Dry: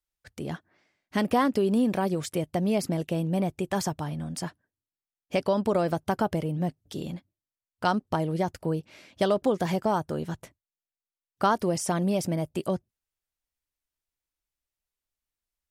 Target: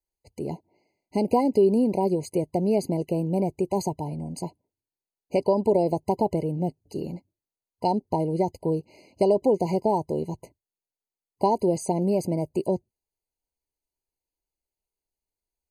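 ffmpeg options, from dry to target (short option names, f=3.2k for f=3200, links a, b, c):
-af "equalizer=f=400:t=o:w=0.67:g=7,equalizer=f=1k:t=o:w=0.67:g=3,equalizer=f=2.5k:t=o:w=0.67:g=-8,afftfilt=real='re*eq(mod(floor(b*sr/1024/1000),2),0)':imag='im*eq(mod(floor(b*sr/1024/1000),2),0)':win_size=1024:overlap=0.75"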